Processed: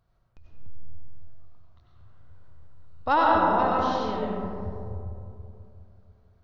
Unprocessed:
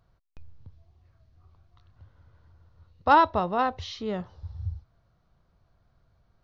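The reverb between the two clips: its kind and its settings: digital reverb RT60 2.7 s, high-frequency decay 0.3×, pre-delay 55 ms, DRR -4 dB; gain -4.5 dB

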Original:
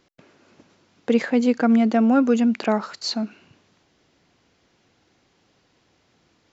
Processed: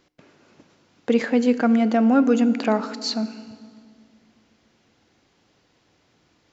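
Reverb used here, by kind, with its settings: FDN reverb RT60 2.1 s, low-frequency decay 1.3×, high-frequency decay 0.8×, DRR 13.5 dB

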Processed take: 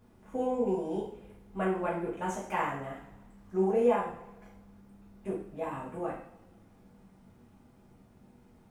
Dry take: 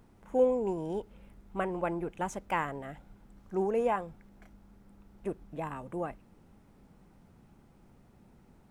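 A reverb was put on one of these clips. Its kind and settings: two-slope reverb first 0.52 s, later 1.5 s, from -18 dB, DRR -7 dB; gain -7 dB

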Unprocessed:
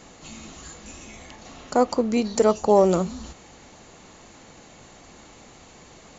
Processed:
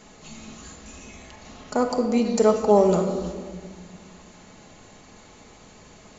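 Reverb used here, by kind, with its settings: shoebox room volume 2200 m³, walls mixed, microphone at 1.4 m; gain -3 dB

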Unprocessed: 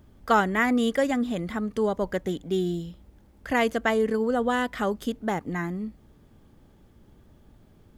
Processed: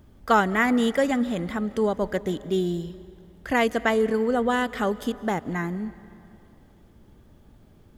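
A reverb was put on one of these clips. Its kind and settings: digital reverb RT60 2.7 s, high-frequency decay 0.75×, pre-delay 0.115 s, DRR 17.5 dB; gain +1.5 dB

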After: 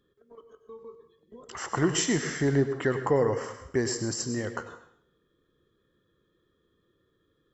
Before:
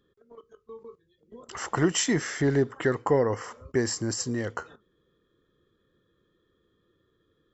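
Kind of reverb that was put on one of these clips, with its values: plate-style reverb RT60 0.59 s, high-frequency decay 1×, pre-delay 85 ms, DRR 9 dB; gain -1.5 dB

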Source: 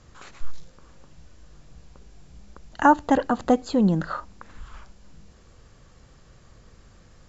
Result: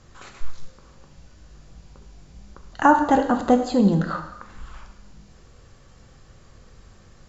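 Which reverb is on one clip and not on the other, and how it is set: non-linear reverb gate 0.32 s falling, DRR 5 dB; gain +1 dB

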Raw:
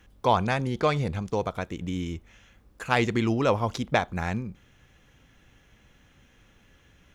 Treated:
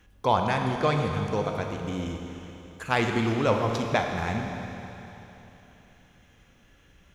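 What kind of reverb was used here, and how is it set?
Schroeder reverb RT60 3.3 s, combs from 27 ms, DRR 3 dB; gain -1.5 dB

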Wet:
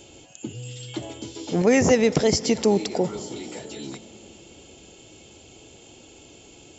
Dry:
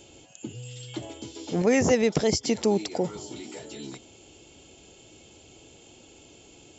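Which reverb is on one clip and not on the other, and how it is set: digital reverb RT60 4.5 s, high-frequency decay 0.5×, pre-delay 20 ms, DRR 16.5 dB; gain +3.5 dB

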